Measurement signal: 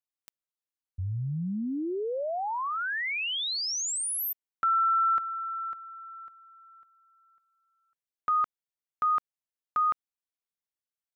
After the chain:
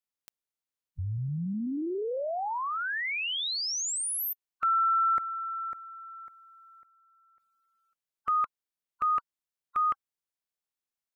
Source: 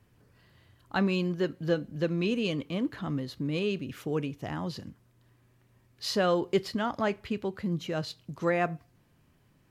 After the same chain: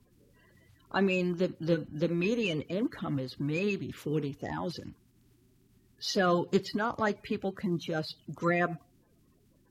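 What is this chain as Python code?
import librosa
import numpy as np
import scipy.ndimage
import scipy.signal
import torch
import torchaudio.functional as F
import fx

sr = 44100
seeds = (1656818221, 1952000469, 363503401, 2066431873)

y = fx.spec_quant(x, sr, step_db=30)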